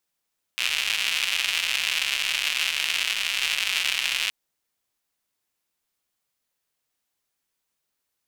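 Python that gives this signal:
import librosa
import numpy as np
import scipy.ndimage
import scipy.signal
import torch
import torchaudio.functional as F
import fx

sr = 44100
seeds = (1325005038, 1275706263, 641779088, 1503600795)

y = fx.rain(sr, seeds[0], length_s=3.72, drops_per_s=210.0, hz=2700.0, bed_db=-30.0)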